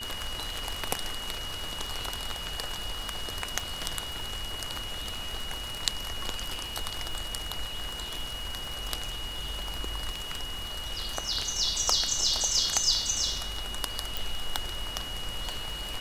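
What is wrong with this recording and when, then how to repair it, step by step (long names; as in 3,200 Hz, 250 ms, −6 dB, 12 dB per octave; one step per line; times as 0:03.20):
surface crackle 48 per second −35 dBFS
whistle 2,900 Hz −37 dBFS
0:14.17: click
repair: click removal
notch filter 2,900 Hz, Q 30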